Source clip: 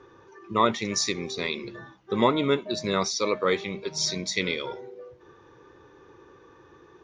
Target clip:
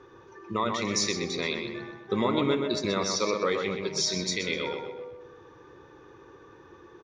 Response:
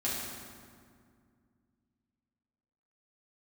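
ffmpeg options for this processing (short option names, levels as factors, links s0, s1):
-filter_complex "[0:a]alimiter=limit=0.158:level=0:latency=1:release=153,asplit=2[s0][s1];[s1]adelay=126,lowpass=f=3500:p=1,volume=0.596,asplit=2[s2][s3];[s3]adelay=126,lowpass=f=3500:p=1,volume=0.48,asplit=2[s4][s5];[s5]adelay=126,lowpass=f=3500:p=1,volume=0.48,asplit=2[s6][s7];[s7]adelay=126,lowpass=f=3500:p=1,volume=0.48,asplit=2[s8][s9];[s9]adelay=126,lowpass=f=3500:p=1,volume=0.48,asplit=2[s10][s11];[s11]adelay=126,lowpass=f=3500:p=1,volume=0.48[s12];[s2][s4][s6][s8][s10][s12]amix=inputs=6:normalize=0[s13];[s0][s13]amix=inputs=2:normalize=0"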